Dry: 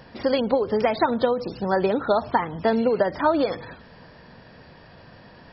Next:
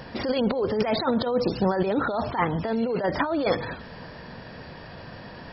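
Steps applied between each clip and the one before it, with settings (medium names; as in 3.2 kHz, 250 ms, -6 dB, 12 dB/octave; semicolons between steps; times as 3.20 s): compressor with a negative ratio -26 dBFS, ratio -1; trim +2 dB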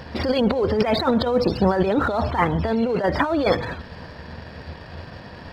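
peaking EQ 78 Hz +15 dB 0.34 oct; in parallel at -3 dB: crossover distortion -39 dBFS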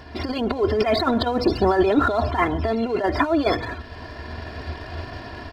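comb 2.9 ms, depth 73%; level rider gain up to 8 dB; trim -5 dB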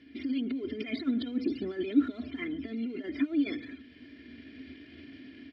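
vowel filter i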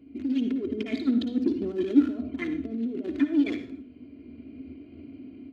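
local Wiener filter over 25 samples; reverberation RT60 0.45 s, pre-delay 52 ms, DRR 8.5 dB; trim +5 dB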